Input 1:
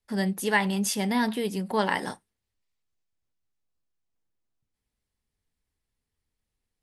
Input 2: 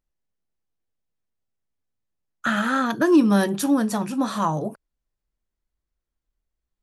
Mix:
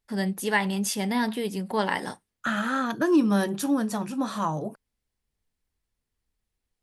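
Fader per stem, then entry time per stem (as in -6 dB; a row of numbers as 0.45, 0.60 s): -0.5, -4.5 dB; 0.00, 0.00 s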